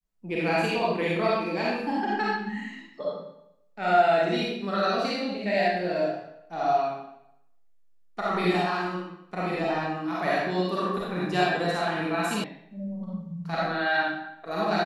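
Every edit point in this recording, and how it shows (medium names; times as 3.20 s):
12.44 s: sound stops dead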